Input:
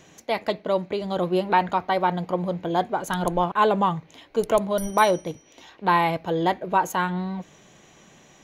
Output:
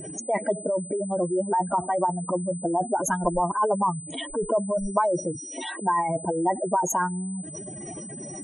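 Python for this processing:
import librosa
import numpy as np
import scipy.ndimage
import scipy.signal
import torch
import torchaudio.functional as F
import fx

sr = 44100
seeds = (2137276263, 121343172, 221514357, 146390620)

y = fx.spec_expand(x, sr, power=3.5)
y = y + 0.39 * np.pad(y, (int(3.1 * sr / 1000.0), 0))[:len(y)]
y = y + 10.0 ** (-51.0 / 20.0) * np.sin(2.0 * np.pi * 8100.0 * np.arange(len(y)) / sr)
y = fx.spectral_comp(y, sr, ratio=2.0)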